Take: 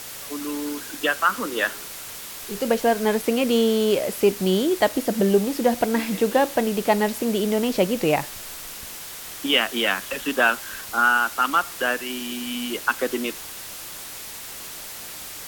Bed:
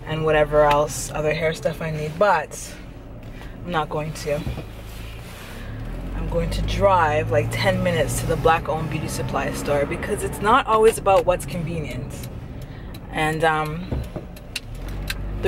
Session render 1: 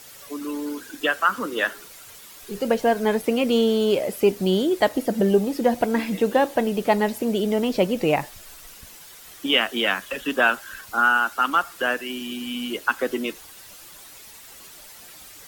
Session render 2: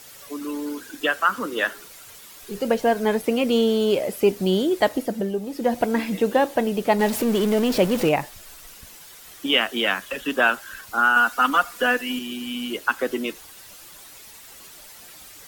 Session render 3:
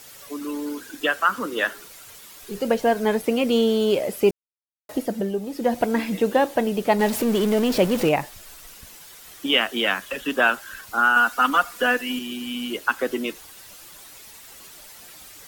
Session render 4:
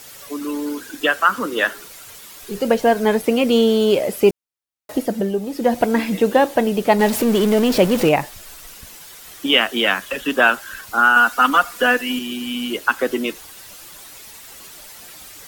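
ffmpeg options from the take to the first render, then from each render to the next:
-af "afftdn=nr=10:nf=-37"
-filter_complex "[0:a]asettb=1/sr,asplit=3[a][b][c];[a]atrim=end=6.994[d];[b]atrim=start=6.99:end=8.09,asetpts=PTS-STARTPTS,afade=t=in:d=0.004:c=qsin,afade=t=out:st=1.096:d=0.004:c=qsin,aeval=exprs='val(0)+0.5*0.0531*sgn(val(0))':c=same[e];[c]atrim=start=8.086[f];[d][e]acrossfade=d=0.004:c1=hsin:c2=qsin[g];[g][f]acrossfade=d=0.004:c1=qsin:c2=hsin,asettb=1/sr,asplit=3[h][i][j];[h]atrim=end=11.164[k];[i]atrim=start=11.16:end=12.19,asetpts=PTS-STARTPTS,afade=t=in:d=0.004:c=qsin,afade=t=out:st=1.026:d=0.004:c=qsin,aecho=1:1:4.1:0.99,atrim=end_sample=45423[l];[j]atrim=start=12.186[m];[k][l]acrossfade=d=0.004:c1=hsin:c2=qsin[n];[n][m]acrossfade=d=0.004:c1=qsin:c2=hsin,asplit=3[o][p][q];[o]atrim=end=5.32,asetpts=PTS-STARTPTS,afade=t=out:st=4.93:d=0.39:silence=0.375837[r];[p]atrim=start=5.32:end=5.41,asetpts=PTS-STARTPTS,volume=-8.5dB[s];[q]atrim=start=5.41,asetpts=PTS-STARTPTS,afade=t=in:d=0.39:silence=0.375837[t];[r][s][t]concat=n=3:v=0:a=1"
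-filter_complex "[0:a]asplit=3[a][b][c];[a]atrim=end=4.31,asetpts=PTS-STARTPTS,afade=t=out:st=4.306:d=0.004:c=hsin[d];[b]atrim=start=4.31:end=4.89,asetpts=PTS-STARTPTS,volume=0[e];[c]atrim=start=4.89,asetpts=PTS-STARTPTS,afade=t=in:d=0.004:c=hsin[f];[d][e][f]concat=n=3:v=0:a=1"
-af "volume=4.5dB,alimiter=limit=-2dB:level=0:latency=1"

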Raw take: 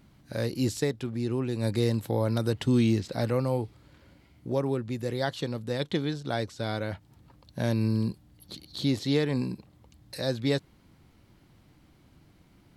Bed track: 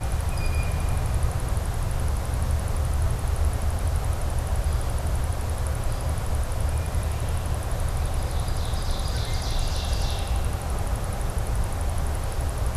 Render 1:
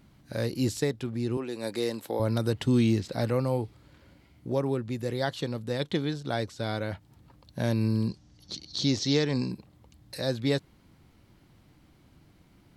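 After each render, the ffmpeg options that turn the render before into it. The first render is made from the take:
-filter_complex "[0:a]asettb=1/sr,asplit=3[a][b][c];[a]atrim=end=1.374[d];[b]atrim=start=1.37:end=2.2,asetpts=PTS-STARTPTS,afade=t=in:d=0.004:c=qsin,afade=t=out:st=0.826:d=0.004:c=qsin,highpass=320[e];[c]atrim=start=2.196[f];[d][e]acrossfade=d=0.004:c1=hsin:c2=qsin[g];[g][f]acrossfade=d=0.004:c1=qsin:c2=hsin,asettb=1/sr,asplit=3[h][i][j];[h]atrim=end=8.084[k];[i]atrim=start=8.08:end=9.51,asetpts=PTS-STARTPTS,afade=t=in:d=0.004:c=qsin,afade=t=out:st=1.426:d=0.004:c=qsin,lowpass=f=5.9k:t=q:w=4.6[l];[j]atrim=start=9.506[m];[k][l]acrossfade=d=0.004:c1=hsin:c2=qsin[n];[n][m]acrossfade=d=0.004:c1=qsin:c2=hsin"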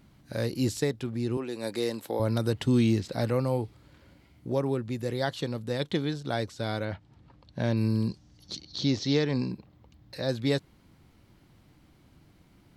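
-filter_complex "[0:a]asettb=1/sr,asplit=3[a][b][c];[a]atrim=end=6.854[d];[b]atrim=start=6.85:end=7.77,asetpts=PTS-STARTPTS,afade=t=in:d=0.004:c=qsin,afade=t=out:st=0.916:d=0.004:c=qsin,lowpass=4.8k[e];[c]atrim=start=7.766[f];[d][e]acrossfade=d=0.004:c1=hsin:c2=qsin[g];[g][f]acrossfade=d=0.004:c1=qsin:c2=hsin,asettb=1/sr,asplit=3[h][i][j];[h]atrim=end=8.614[k];[i]atrim=start=8.61:end=10.29,asetpts=PTS-STARTPTS,afade=t=in:d=0.004:c=qsin,afade=t=out:st=1.676:d=0.004:c=qsin,equalizer=f=9.7k:t=o:w=1.1:g=-13.5[l];[j]atrim=start=10.286[m];[k][l]acrossfade=d=0.004:c1=hsin:c2=qsin[n];[n][m]acrossfade=d=0.004:c1=qsin:c2=hsin"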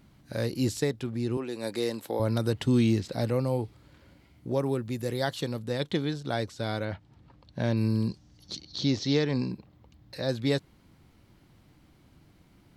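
-filter_complex "[0:a]asettb=1/sr,asplit=3[a][b][c];[a]atrim=end=3.154[d];[b]atrim=start=3.15:end=3.59,asetpts=PTS-STARTPTS,afade=t=in:d=0.004:c=qsin,afade=t=out:st=0.436:d=0.004:c=qsin,equalizer=f=1.4k:w=1.1:g=-4[e];[c]atrim=start=3.586[f];[d][e]acrossfade=d=0.004:c1=hsin:c2=qsin[g];[g][f]acrossfade=d=0.004:c1=qsin:c2=hsin,asettb=1/sr,asplit=3[h][i][j];[h]atrim=end=4.594[k];[i]atrim=start=4.59:end=5.59,asetpts=PTS-STARTPTS,afade=t=in:d=0.004:c=qsin,afade=t=out:st=0.996:d=0.004:c=qsin,highshelf=f=10k:g=11.5[l];[j]atrim=start=5.586[m];[k][l]acrossfade=d=0.004:c1=hsin:c2=qsin[n];[n][m]acrossfade=d=0.004:c1=qsin:c2=hsin"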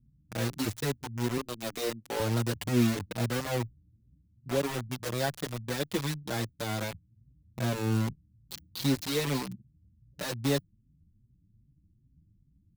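-filter_complex "[0:a]acrossover=split=210[a][b];[b]acrusher=bits=4:mix=0:aa=0.000001[c];[a][c]amix=inputs=2:normalize=0,asplit=2[d][e];[e]adelay=5.8,afreqshift=2.5[f];[d][f]amix=inputs=2:normalize=1"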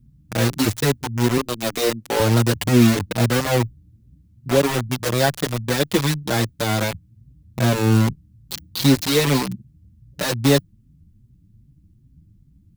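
-af "volume=12dB,alimiter=limit=-3dB:level=0:latency=1"

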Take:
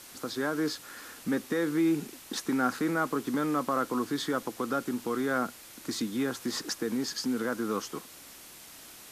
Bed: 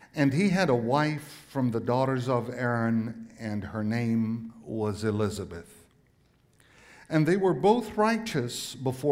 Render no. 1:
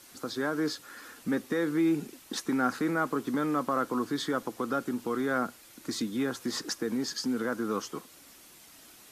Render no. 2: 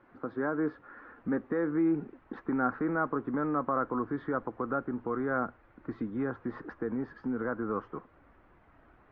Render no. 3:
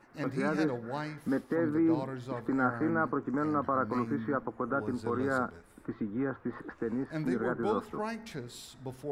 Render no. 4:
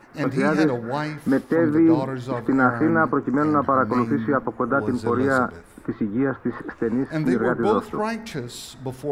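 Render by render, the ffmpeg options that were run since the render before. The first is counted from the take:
-af "afftdn=nr=6:nf=-50"
-af "lowpass=f=1.6k:w=0.5412,lowpass=f=1.6k:w=1.3066,asubboost=boost=4.5:cutoff=91"
-filter_complex "[1:a]volume=-12dB[a];[0:a][a]amix=inputs=2:normalize=0"
-af "volume=10.5dB"

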